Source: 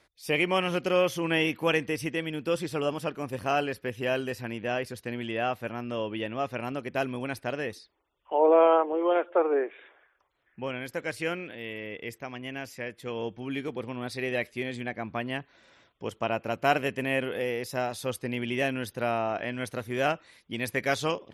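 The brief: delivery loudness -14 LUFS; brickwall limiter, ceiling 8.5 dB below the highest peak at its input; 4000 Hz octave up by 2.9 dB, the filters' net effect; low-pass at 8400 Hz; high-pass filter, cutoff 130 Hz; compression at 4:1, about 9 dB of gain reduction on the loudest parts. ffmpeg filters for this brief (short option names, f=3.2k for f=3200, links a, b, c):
-af "highpass=130,lowpass=8.4k,equalizer=f=4k:t=o:g=4.5,acompressor=threshold=-27dB:ratio=4,volume=21.5dB,alimiter=limit=-1.5dB:level=0:latency=1"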